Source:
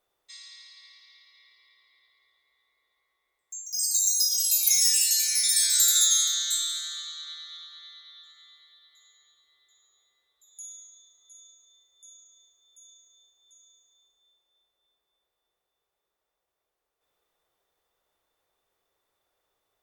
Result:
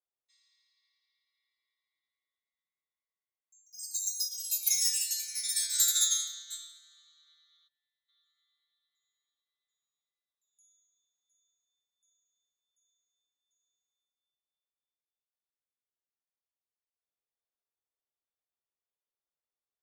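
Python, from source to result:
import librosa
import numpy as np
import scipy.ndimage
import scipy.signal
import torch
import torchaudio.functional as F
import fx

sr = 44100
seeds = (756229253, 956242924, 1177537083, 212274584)

y = fx.vowel_filter(x, sr, vowel='e', at=(7.67, 8.08), fade=0.02)
y = fx.upward_expand(y, sr, threshold_db=-33.0, expansion=2.5)
y = y * 10.0 ** (-3.0 / 20.0)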